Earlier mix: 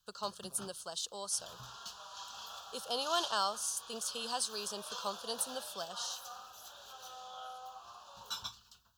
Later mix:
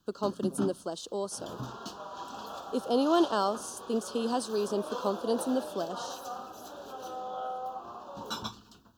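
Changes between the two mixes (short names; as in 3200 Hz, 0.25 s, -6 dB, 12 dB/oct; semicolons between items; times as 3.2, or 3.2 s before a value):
speech -5.5 dB; second sound: add high shelf 2400 Hz -8.5 dB; master: remove passive tone stack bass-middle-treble 10-0-10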